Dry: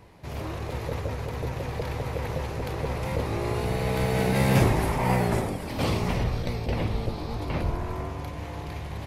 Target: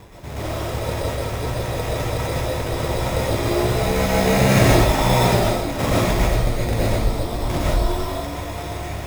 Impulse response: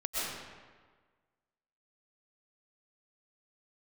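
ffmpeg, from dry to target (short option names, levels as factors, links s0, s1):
-filter_complex "[0:a]areverse,acompressor=mode=upward:threshold=0.0141:ratio=2.5,areverse,acrusher=samples=10:mix=1:aa=0.000001[s0];[1:a]atrim=start_sample=2205,afade=t=out:st=0.21:d=0.01,atrim=end_sample=9702[s1];[s0][s1]afir=irnorm=-1:irlink=0,volume=1.88"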